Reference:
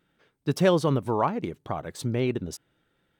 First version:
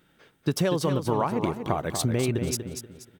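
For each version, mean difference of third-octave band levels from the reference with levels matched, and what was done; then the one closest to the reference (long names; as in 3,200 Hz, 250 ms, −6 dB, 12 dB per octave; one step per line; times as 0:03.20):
7.5 dB: high-shelf EQ 6,400 Hz +6.5 dB
downward compressor 10 to 1, threshold −28 dBFS, peak gain reduction 13.5 dB
on a send: repeating echo 240 ms, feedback 30%, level −7.5 dB
on the sum: level +7 dB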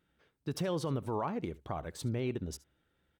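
3.0 dB: parametric band 67 Hz +15 dB 0.42 octaves
brickwall limiter −18.5 dBFS, peak gain reduction 10.5 dB
on a send: single-tap delay 71 ms −20.5 dB
on the sum: level −6 dB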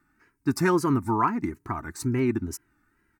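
5.0 dB: phaser with its sweep stopped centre 1,400 Hz, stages 4
comb filter 3.2 ms, depth 63%
tape wow and flutter 98 cents
level +4.5 dB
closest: second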